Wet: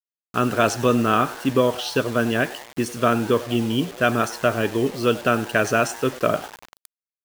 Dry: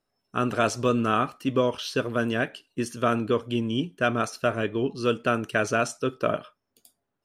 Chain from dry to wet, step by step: frequency-shifting echo 97 ms, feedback 64%, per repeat +120 Hz, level -18.5 dB; bit-crush 7-bit; gain +4.5 dB

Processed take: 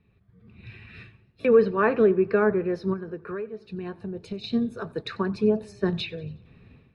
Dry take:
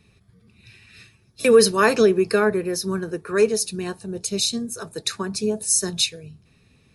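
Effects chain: treble ducked by the level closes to 2800 Hz, closed at -16.5 dBFS; AGC gain up to 15 dB; air absorption 460 m; 2.93–4.44 compressor 12:1, threshold -24 dBFS, peak gain reduction 18 dB; warbling echo 91 ms, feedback 52%, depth 103 cents, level -23 dB; gain -6.5 dB

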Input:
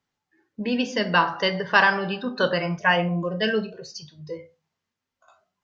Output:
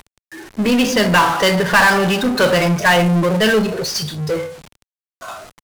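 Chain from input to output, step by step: CVSD 64 kbps; power-law curve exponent 0.5; gain +2.5 dB

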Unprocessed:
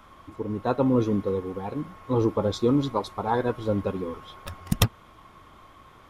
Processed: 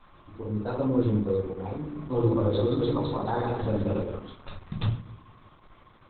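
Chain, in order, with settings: 1.77–4.15 regenerating reverse delay 0.108 s, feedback 55%, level -3 dB; high shelf 6600 Hz +2 dB; limiter -15.5 dBFS, peak gain reduction 10 dB; shoebox room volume 65 m³, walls mixed, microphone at 0.82 m; gain -5.5 dB; Opus 8 kbps 48000 Hz

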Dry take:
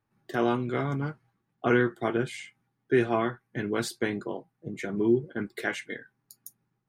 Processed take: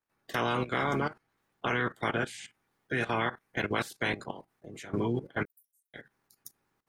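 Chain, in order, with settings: spectral limiter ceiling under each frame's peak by 18 dB; level quantiser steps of 16 dB; 5.45–5.94 inverse Chebyshev high-pass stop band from 2900 Hz, stop band 80 dB; gain +3 dB

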